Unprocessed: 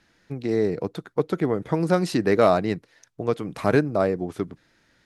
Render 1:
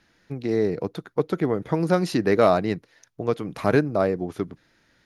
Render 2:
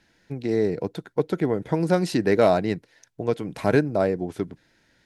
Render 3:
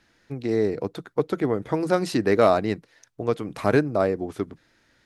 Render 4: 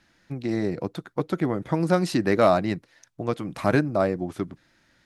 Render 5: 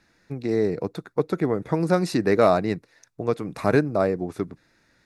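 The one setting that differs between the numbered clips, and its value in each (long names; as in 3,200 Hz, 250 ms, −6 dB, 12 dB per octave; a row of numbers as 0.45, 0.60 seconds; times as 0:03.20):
notch filter, centre frequency: 7,900, 1,200, 170, 440, 3,100 Hertz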